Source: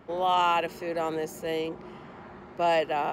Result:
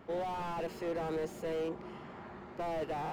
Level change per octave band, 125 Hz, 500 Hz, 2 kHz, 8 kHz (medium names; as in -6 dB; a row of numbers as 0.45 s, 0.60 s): -2.0 dB, -7.5 dB, -12.0 dB, -9.5 dB